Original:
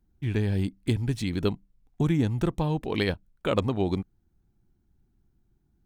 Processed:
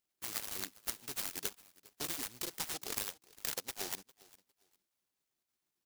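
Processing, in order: random spectral dropouts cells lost 37%; HPF 900 Hz 12 dB/oct; bell 3500 Hz +9.5 dB 2.6 oct; compressor 16:1, threshold -34 dBFS, peak gain reduction 16 dB; feedback echo 0.404 s, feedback 24%, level -22 dB; noise-modulated delay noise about 5000 Hz, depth 0.31 ms

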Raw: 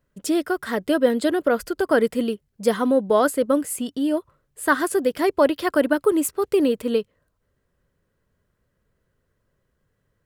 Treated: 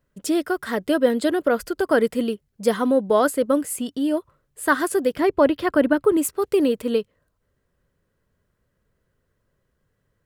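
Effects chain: 5.16–6.17 tone controls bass +7 dB, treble -8 dB

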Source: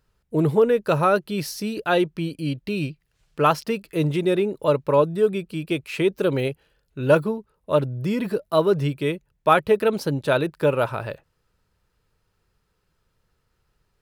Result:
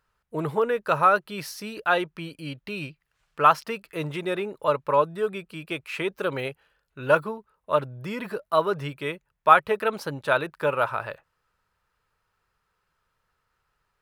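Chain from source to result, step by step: EQ curve 330 Hz 0 dB, 1200 Hz +14 dB, 4500 Hz +5 dB; gain -10 dB

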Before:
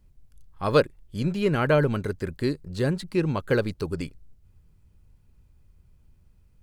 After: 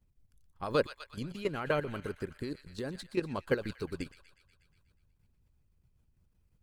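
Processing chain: thin delay 0.121 s, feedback 65%, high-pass 1500 Hz, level -9 dB; level quantiser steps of 10 dB; harmonic-percussive split harmonic -9 dB; gain -3 dB

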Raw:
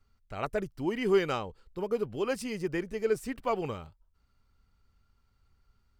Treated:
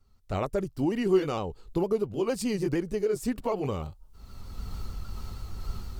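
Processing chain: repeated pitch sweeps -1.5 st, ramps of 0.153 s; recorder AGC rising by 31 dB/s; bell 1900 Hz -8.5 dB 1.5 oct; gain +3.5 dB

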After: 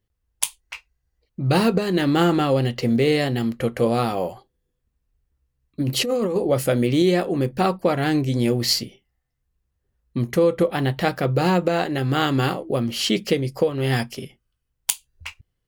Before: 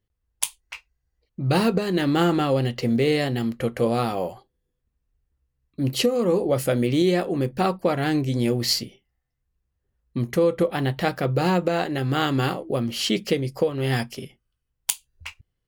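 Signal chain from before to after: 5.8–6.36 negative-ratio compressor -24 dBFS, ratio -1; gain +2 dB

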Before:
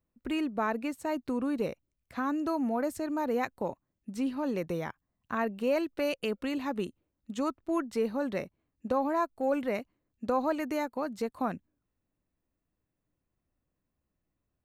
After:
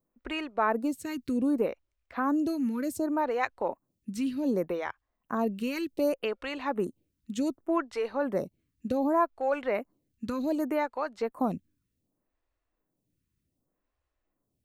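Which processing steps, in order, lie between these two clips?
photocell phaser 0.66 Hz; gain +5 dB

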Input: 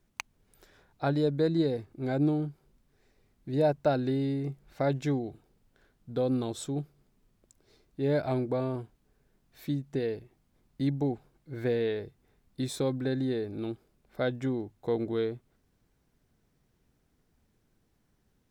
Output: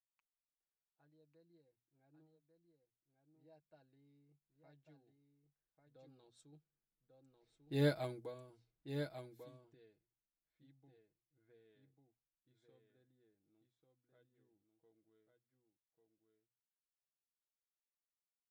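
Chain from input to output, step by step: Doppler pass-by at 7.81, 12 m/s, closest 2.1 m; pre-emphasis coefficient 0.8; notches 60/120/180/240 Hz; comb 6.2 ms, depth 52%; echo 1.144 s -5.5 dB; low-pass opened by the level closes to 1700 Hz, open at -51 dBFS; upward expander 1.5:1, over -58 dBFS; gain +8.5 dB

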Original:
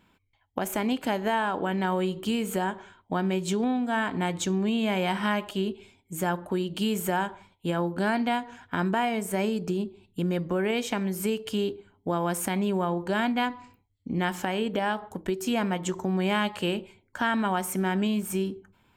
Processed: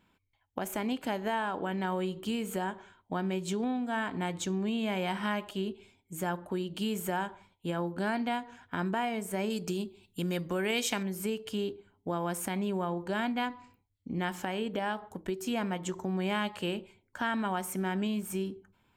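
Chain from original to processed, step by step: 9.5–11.03 high shelf 2300 Hz +11.5 dB; gain -5.5 dB

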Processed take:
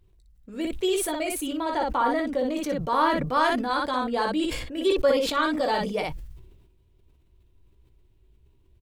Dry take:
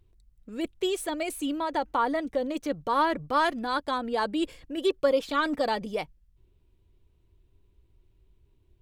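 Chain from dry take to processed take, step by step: early reflections 16 ms -7 dB, 59 ms -5 dB; sustainer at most 46 dB/s

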